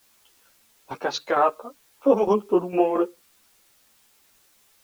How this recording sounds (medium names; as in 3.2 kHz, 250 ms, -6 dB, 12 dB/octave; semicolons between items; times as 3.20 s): tremolo saw down 4.4 Hz, depth 65%; a quantiser's noise floor 10-bit, dither triangular; a shimmering, thickened sound